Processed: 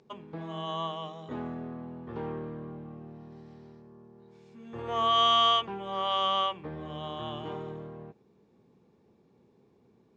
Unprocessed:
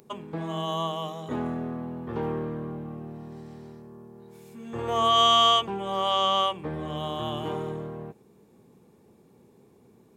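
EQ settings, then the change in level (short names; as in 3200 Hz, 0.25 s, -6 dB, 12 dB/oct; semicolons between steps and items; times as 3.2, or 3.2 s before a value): dynamic EQ 1700 Hz, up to +5 dB, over -36 dBFS, Q 0.81; LPF 5700 Hz 24 dB/oct; -6.5 dB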